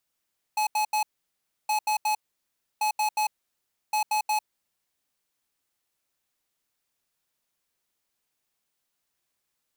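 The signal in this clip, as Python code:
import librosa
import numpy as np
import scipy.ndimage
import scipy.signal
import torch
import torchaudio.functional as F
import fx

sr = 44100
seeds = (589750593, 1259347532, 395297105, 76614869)

y = fx.beep_pattern(sr, wave='square', hz=852.0, on_s=0.1, off_s=0.08, beeps=3, pause_s=0.66, groups=4, level_db=-24.5)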